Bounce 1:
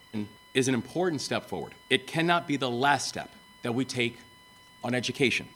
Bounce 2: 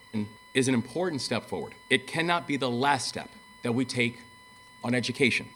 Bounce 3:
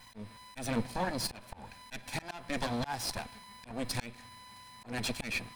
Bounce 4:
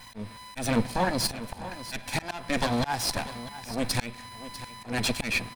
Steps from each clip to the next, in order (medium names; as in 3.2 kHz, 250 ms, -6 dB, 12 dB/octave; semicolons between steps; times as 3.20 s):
rippled EQ curve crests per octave 0.94, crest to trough 8 dB
comb filter that takes the minimum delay 1.2 ms; slow attack 271 ms
delay 646 ms -14 dB; trim +7.5 dB